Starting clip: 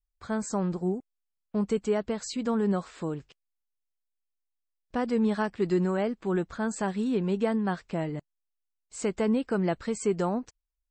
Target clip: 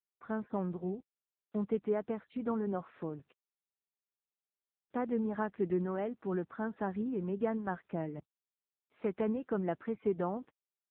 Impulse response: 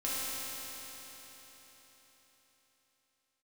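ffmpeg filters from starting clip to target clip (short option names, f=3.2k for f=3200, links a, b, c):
-af "highpass=140,lowpass=2.1k,volume=-5dB" -ar 8000 -c:a libopencore_amrnb -b:a 7950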